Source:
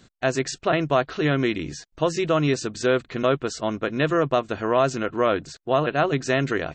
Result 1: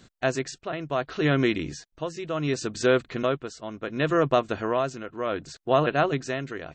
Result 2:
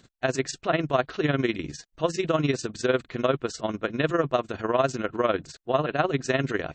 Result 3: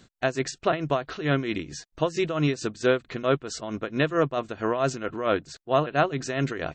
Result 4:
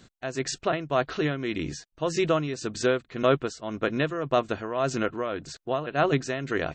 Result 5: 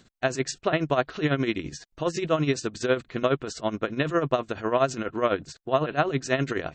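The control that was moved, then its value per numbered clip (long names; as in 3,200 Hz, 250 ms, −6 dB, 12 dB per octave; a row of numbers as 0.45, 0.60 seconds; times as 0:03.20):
amplitude tremolo, speed: 0.69, 20, 4.5, 1.8, 12 Hertz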